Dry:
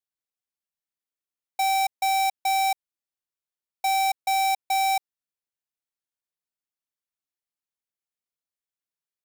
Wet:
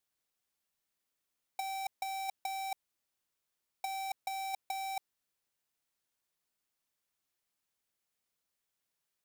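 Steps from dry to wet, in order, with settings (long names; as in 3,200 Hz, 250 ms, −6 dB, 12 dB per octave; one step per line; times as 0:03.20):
compressor whose output falls as the input rises −30 dBFS, ratio −0.5
level −4 dB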